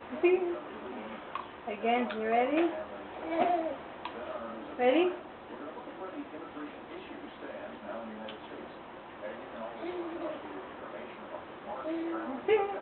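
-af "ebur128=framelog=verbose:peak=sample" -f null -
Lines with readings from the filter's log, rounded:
Integrated loudness:
  I:         -34.6 LUFS
  Threshold: -44.9 LUFS
Loudness range:
  LRA:        11.3 LU
  Threshold: -55.4 LUFS
  LRA low:   -43.2 LUFS
  LRA high:  -31.9 LUFS
Sample peak:
  Peak:      -15.0 dBFS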